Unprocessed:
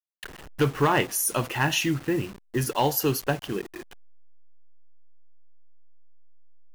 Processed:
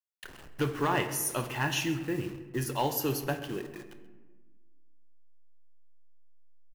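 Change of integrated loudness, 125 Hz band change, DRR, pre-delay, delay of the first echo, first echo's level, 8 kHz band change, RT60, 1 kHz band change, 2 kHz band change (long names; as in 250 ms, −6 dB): −6.0 dB, −6.0 dB, 7.5 dB, 3 ms, 132 ms, −19.5 dB, −6.0 dB, 1.3 s, −5.5 dB, −6.0 dB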